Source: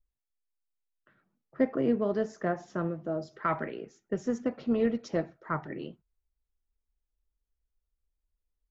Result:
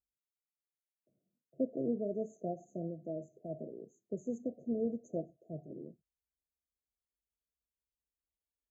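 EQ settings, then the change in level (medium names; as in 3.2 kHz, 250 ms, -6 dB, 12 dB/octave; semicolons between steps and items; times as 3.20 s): high-pass 93 Hz 12 dB/octave; brick-wall FIR band-stop 730–6100 Hz; -7.5 dB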